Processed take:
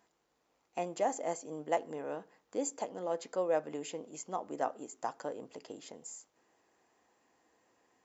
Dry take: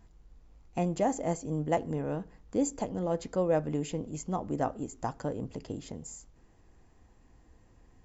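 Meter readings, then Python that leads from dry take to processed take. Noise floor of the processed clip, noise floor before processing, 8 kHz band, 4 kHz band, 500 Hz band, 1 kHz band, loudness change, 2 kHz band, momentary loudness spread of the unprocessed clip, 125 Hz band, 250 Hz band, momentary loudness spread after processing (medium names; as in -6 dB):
-78 dBFS, -61 dBFS, no reading, -1.5 dB, -3.5 dB, -2.0 dB, -5.0 dB, -1.5 dB, 11 LU, -19.5 dB, -11.0 dB, 13 LU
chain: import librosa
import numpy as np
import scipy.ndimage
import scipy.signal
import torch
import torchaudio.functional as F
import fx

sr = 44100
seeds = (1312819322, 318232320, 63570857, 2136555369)

y = scipy.signal.sosfilt(scipy.signal.butter(2, 450.0, 'highpass', fs=sr, output='sos'), x)
y = y * 10.0 ** (-1.5 / 20.0)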